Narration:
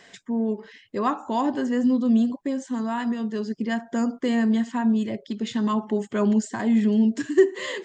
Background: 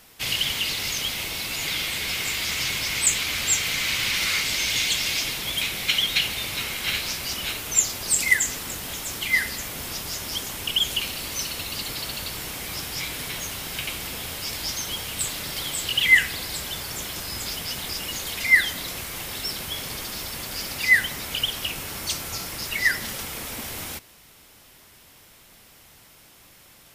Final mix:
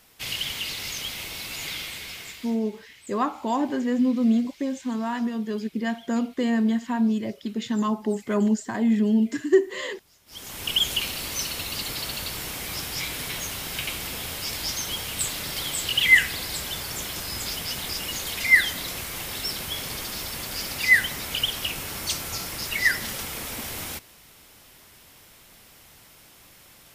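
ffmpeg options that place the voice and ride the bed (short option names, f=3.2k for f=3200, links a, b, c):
-filter_complex "[0:a]adelay=2150,volume=-1dB[a];[1:a]volume=23dB,afade=t=out:st=1.65:d=0.95:silence=0.0707946,afade=t=in:st=10.26:d=0.46:silence=0.0398107[b];[a][b]amix=inputs=2:normalize=0"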